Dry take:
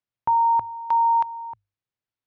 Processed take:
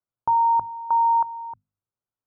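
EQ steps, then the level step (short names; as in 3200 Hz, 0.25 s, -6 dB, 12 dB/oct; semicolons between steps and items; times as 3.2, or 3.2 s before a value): steep low-pass 1500 Hz 96 dB/oct; notches 50/100/150/200/250 Hz; 0.0 dB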